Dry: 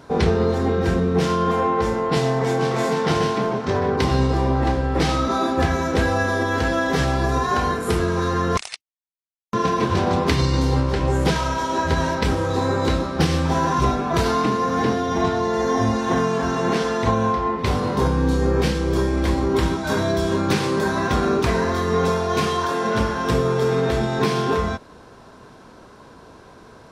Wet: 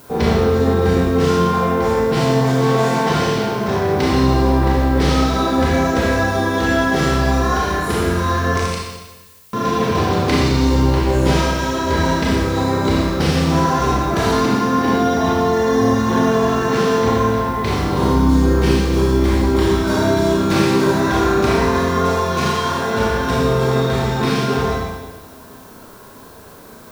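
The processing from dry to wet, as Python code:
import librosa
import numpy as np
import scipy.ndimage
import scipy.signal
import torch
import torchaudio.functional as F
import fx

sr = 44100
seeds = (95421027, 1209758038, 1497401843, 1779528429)

y = fx.rev_schroeder(x, sr, rt60_s=1.2, comb_ms=27, drr_db=-4.5)
y = fx.dmg_noise_colour(y, sr, seeds[0], colour='blue', level_db=-46.0)
y = y * 10.0 ** (-1.5 / 20.0)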